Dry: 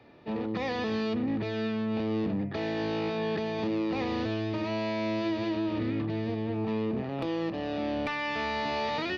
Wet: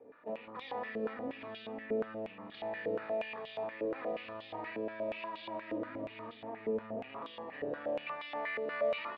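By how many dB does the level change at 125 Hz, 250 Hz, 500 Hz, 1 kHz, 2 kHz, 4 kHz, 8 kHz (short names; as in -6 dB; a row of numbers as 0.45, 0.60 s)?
-20.5 dB, -14.5 dB, -4.5 dB, -7.5 dB, -6.5 dB, -11.0 dB, n/a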